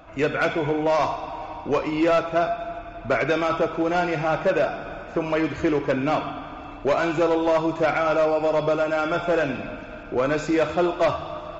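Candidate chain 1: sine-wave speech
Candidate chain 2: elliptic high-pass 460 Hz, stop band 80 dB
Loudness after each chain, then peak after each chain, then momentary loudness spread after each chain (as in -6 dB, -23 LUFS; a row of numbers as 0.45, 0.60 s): -23.0, -25.0 LUFS; -6.5, -11.0 dBFS; 14, 11 LU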